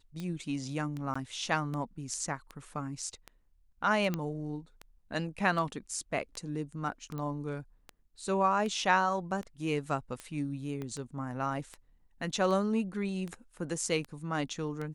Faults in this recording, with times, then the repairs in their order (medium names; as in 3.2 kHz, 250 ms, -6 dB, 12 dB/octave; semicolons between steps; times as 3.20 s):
tick 78 rpm -26 dBFS
1.14–1.16 s: dropout 15 ms
4.14 s: pop -19 dBFS
7.18 s: pop -27 dBFS
10.82 s: pop -26 dBFS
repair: de-click; interpolate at 1.14 s, 15 ms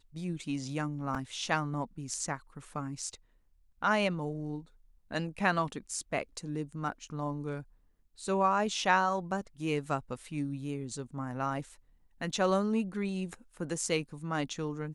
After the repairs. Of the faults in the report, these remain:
10.82 s: pop